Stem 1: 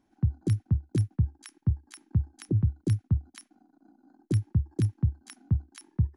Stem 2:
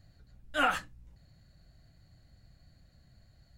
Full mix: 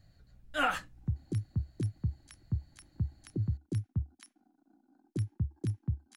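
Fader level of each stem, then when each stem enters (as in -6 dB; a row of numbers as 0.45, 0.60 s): -7.5, -2.0 dB; 0.85, 0.00 s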